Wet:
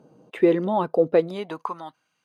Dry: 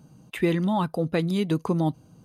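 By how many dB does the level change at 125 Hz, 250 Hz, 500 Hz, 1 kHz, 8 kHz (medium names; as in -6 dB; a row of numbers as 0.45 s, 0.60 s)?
-9.0 dB, -1.0 dB, +7.0 dB, +2.5 dB, under -10 dB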